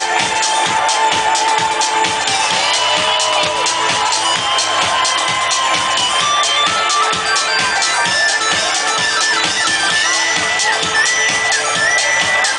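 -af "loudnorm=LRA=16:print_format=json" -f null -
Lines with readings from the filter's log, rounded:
"input_i" : "-12.8",
"input_tp" : "-1.2",
"input_lra" : "1.0",
"input_thresh" : "-22.8",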